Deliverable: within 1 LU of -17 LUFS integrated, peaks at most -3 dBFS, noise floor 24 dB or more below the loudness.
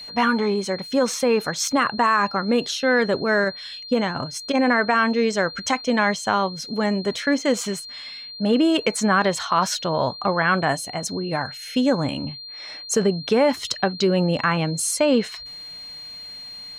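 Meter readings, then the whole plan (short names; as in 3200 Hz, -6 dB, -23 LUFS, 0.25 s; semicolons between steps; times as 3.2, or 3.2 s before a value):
steady tone 4200 Hz; tone level -35 dBFS; loudness -21.5 LUFS; peak -6.5 dBFS; loudness target -17.0 LUFS
-> notch 4200 Hz, Q 30; gain +4.5 dB; limiter -3 dBFS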